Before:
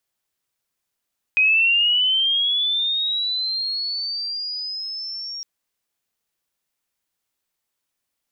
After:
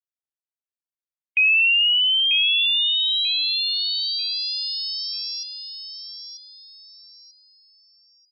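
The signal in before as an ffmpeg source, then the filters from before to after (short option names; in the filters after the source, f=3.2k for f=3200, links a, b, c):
-f lavfi -i "aevalsrc='pow(10,(-13-16*t/4.06)/20)*sin(2*PI*(2500*t+3100*t*t/(2*4.06)))':d=4.06:s=44100"
-filter_complex "[0:a]afftdn=nr=25:nf=-32,asplit=2[a][b];[b]aecho=0:1:940|1880|2820|3760:0.422|0.135|0.0432|0.0138[c];[a][c]amix=inputs=2:normalize=0"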